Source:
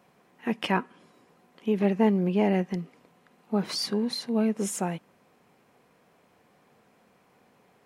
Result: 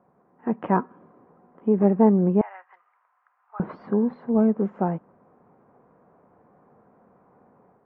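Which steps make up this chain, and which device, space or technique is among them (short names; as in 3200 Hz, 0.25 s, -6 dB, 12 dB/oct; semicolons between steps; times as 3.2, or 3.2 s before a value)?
2.41–3.6 inverse Chebyshev high-pass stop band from 250 Hz, stop band 70 dB; action camera in a waterproof case (LPF 1300 Hz 24 dB/oct; AGC gain up to 5.5 dB; AAC 48 kbps 32000 Hz)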